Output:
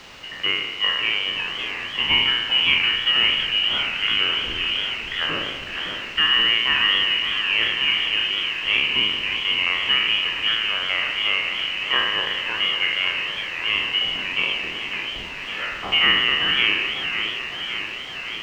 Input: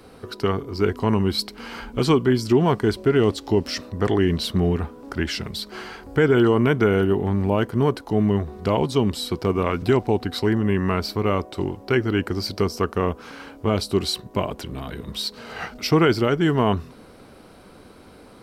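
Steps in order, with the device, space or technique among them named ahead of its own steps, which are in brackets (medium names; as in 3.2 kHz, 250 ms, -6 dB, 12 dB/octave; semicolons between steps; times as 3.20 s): spectral sustain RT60 1.23 s; scrambled radio voice (band-pass 350–2900 Hz; frequency inversion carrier 3.3 kHz; white noise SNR 15 dB); distance through air 180 m; modulated delay 558 ms, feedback 70%, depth 192 cents, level -8 dB; trim +2 dB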